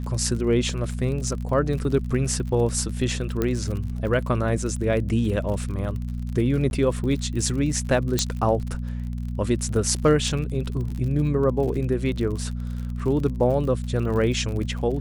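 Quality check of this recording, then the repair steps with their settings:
surface crackle 48 per second −31 dBFS
mains hum 60 Hz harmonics 4 −29 dBFS
0:03.42: click −11 dBFS
0:06.70–0:06.71: drop-out 11 ms
0:08.19: click −6 dBFS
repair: click removal
hum removal 60 Hz, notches 4
repair the gap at 0:06.70, 11 ms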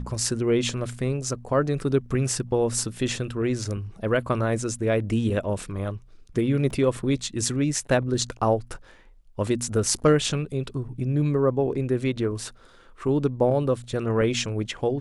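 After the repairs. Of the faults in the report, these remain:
0:08.19: click

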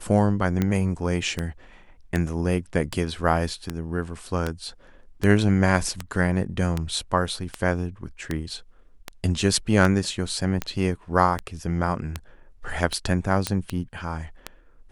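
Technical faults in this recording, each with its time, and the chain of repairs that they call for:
scratch tick 78 rpm −11 dBFS
0:13.47: click −8 dBFS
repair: click removal

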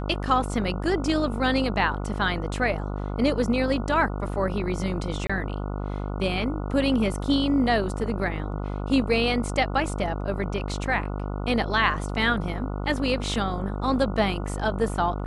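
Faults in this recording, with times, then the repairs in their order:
mains buzz 50 Hz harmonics 29 −30 dBFS
0:05.27–0:05.29: drop-out 25 ms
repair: hum removal 50 Hz, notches 29
repair the gap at 0:05.27, 25 ms

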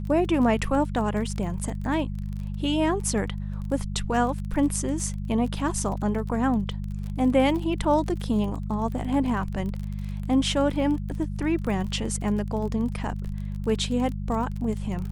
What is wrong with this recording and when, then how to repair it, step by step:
surface crackle 30 per second −32 dBFS
mains hum 50 Hz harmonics 4 −31 dBFS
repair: click removal
hum removal 50 Hz, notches 4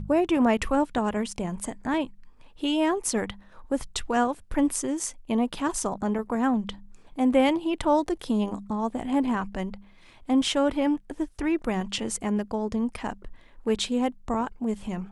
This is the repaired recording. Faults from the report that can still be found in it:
none of them is left

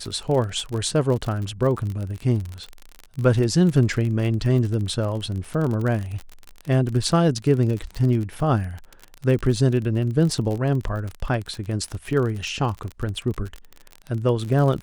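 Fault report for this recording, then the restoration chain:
surface crackle 38 per second −27 dBFS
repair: click removal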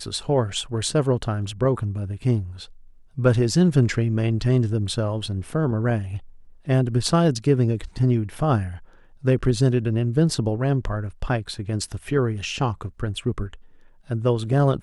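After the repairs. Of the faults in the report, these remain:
none of them is left

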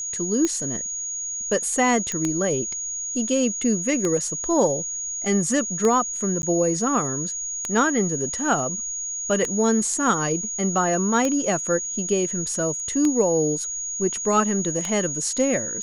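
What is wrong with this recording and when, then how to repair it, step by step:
scratch tick 33 1/3 rpm −10 dBFS
whistle 6,700 Hz −27 dBFS
0:02.12: click −12 dBFS
0:06.42–0:06.43: drop-out 11 ms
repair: click removal
notch filter 6,700 Hz, Q 30
repair the gap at 0:06.42, 11 ms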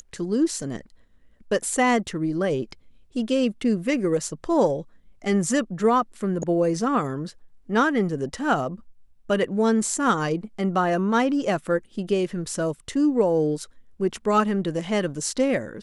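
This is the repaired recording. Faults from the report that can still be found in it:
none of them is left

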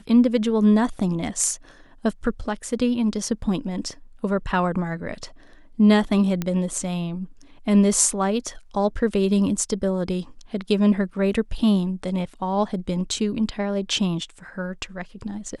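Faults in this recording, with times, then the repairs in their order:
0:06.42: click −12 dBFS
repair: click removal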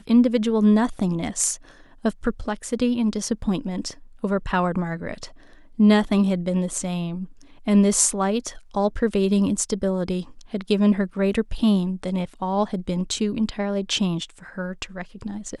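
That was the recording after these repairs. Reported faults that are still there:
none of them is left

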